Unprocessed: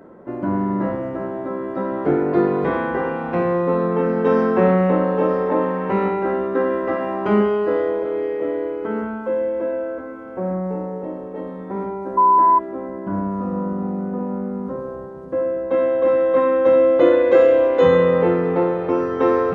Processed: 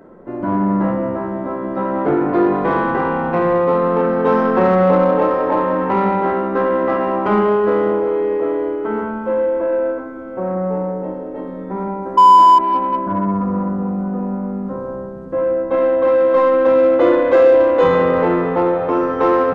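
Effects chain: echo with dull and thin repeats by turns 0.187 s, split 830 Hz, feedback 68%, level -12.5 dB; downsampling 22050 Hz; on a send at -12.5 dB: tilt -4.5 dB/oct + reverb RT60 1.2 s, pre-delay 4 ms; on the sum: dynamic EQ 970 Hz, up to +8 dB, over -33 dBFS, Q 0.99; in parallel at -4.5 dB: soft clip -15 dBFS, distortion -7 dB; on the sum: gain -3.5 dB

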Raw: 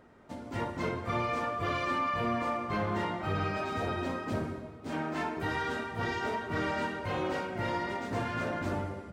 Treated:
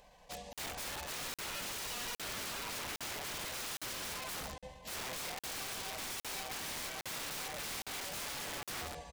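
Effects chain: passive tone stack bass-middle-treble 10-0-10; compressor 8:1, threshold -42 dBFS, peak gain reduction 7 dB; pitch shift -3.5 st; fixed phaser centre 360 Hz, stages 6; wrapped overs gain 50 dB; crackling interface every 0.81 s, samples 2048, zero, from 0.53; gain +13.5 dB

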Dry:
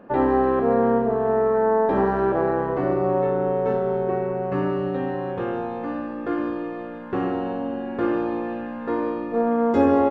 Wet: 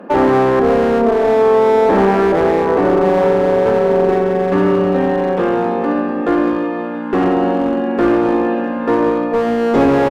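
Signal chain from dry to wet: elliptic high-pass 170 Hz; in parallel at -0.5 dB: limiter -18 dBFS, peak gain reduction 11 dB; on the sum: one-sided clip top -18 dBFS; outdoor echo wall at 190 m, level -12 dB; gain +6.5 dB

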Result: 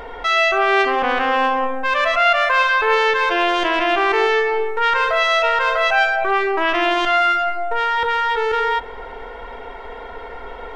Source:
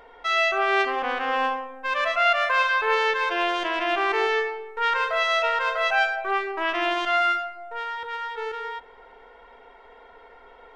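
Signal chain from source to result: low shelf 210 Hz +8 dB; in parallel at 0 dB: negative-ratio compressor -33 dBFS, ratio -1; on the sum: gain +4 dB

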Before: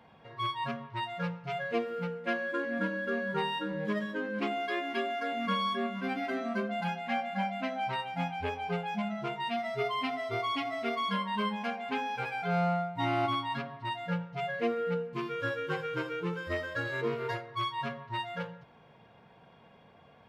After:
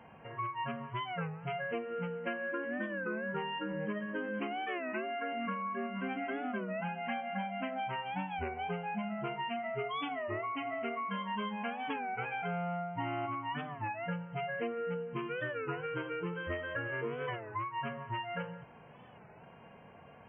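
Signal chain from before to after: compressor, threshold -37 dBFS, peak gain reduction 11.5 dB; brick-wall FIR low-pass 3200 Hz; record warp 33 1/3 rpm, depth 160 cents; gain +3 dB

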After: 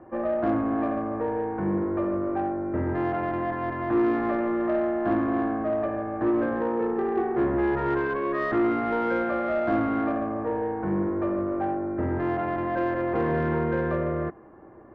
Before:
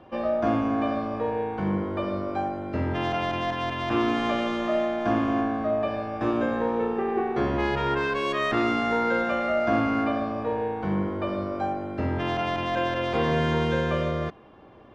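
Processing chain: Chebyshev low-pass 1900 Hz, order 4; bell 340 Hz +8.5 dB 0.25 oct; in parallel at +2 dB: soft clip -22 dBFS, distortion -12 dB; on the sum: gain -7 dB

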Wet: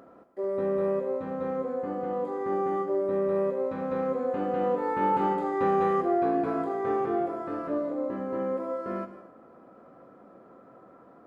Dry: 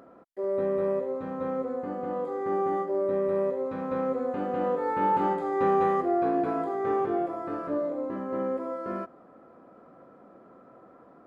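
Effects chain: non-linear reverb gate 0.27 s flat, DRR 9.5 dB

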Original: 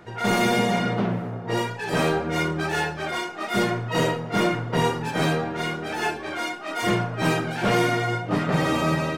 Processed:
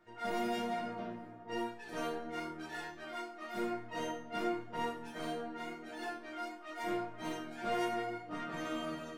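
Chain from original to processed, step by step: resonator bank A#3 sus4, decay 0.29 s

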